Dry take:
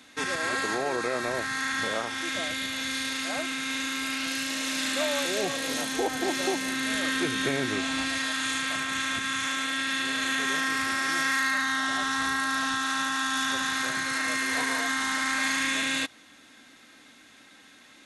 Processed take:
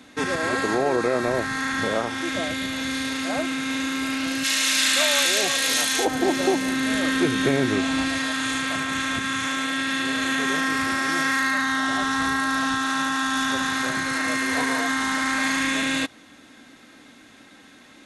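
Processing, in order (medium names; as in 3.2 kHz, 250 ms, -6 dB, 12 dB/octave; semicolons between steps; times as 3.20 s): tilt shelf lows +5 dB, from 4.43 s lows -6 dB, from 6.04 s lows +4 dB; trim +5 dB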